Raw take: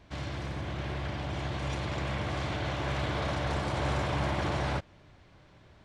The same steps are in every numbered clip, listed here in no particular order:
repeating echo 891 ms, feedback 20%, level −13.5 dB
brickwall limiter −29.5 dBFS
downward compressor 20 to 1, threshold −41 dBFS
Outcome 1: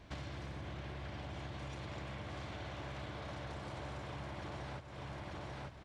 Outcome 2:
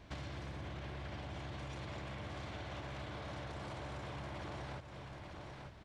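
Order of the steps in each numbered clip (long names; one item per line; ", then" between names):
repeating echo, then downward compressor, then brickwall limiter
brickwall limiter, then repeating echo, then downward compressor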